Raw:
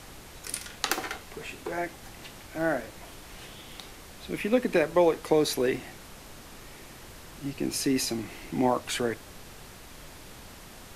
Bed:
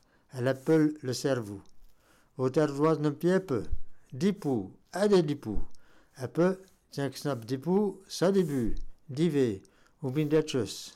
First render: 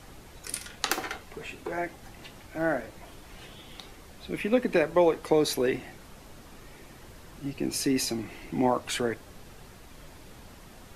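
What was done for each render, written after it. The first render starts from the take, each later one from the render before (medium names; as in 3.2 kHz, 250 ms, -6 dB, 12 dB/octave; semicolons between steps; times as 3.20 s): noise reduction 6 dB, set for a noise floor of -48 dBFS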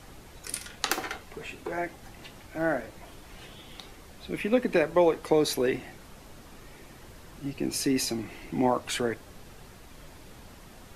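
no audible change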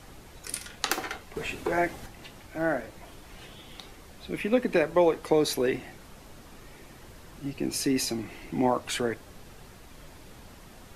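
1.36–2.06 s: gain +6 dB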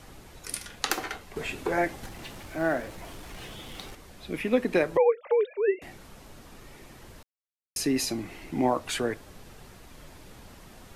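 2.03–3.95 s: companding laws mixed up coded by mu; 4.97–5.82 s: formants replaced by sine waves; 7.23–7.76 s: mute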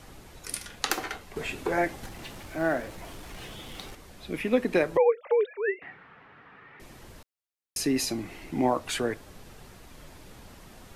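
5.46–6.80 s: cabinet simulation 190–2600 Hz, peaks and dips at 230 Hz -9 dB, 340 Hz -9 dB, 590 Hz -9 dB, 1.3 kHz +5 dB, 1.8 kHz +7 dB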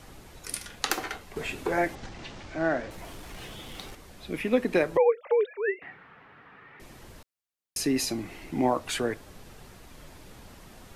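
1.95–2.91 s: low-pass 6.6 kHz 24 dB/octave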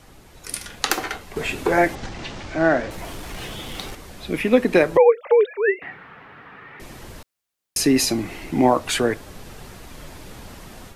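level rider gain up to 9 dB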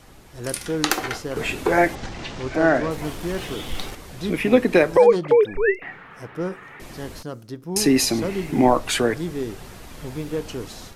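add bed -2 dB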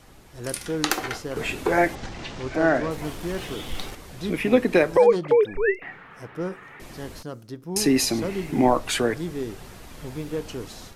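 trim -2.5 dB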